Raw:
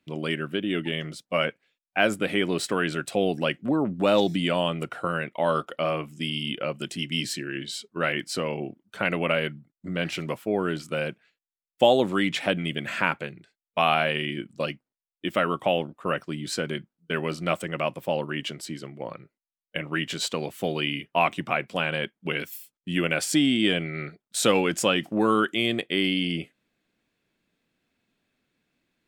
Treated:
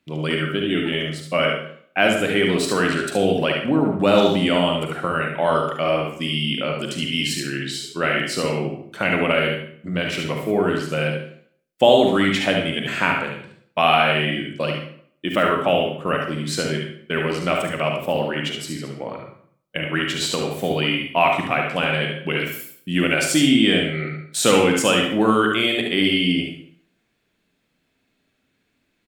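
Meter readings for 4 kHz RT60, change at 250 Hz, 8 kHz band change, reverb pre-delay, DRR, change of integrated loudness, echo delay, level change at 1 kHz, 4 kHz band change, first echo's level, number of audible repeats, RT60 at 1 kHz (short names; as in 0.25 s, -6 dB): 0.50 s, +6.0 dB, +6.0 dB, 39 ms, 1.0 dB, +6.0 dB, 72 ms, +6.0 dB, +6.5 dB, -6.0 dB, 1, 0.60 s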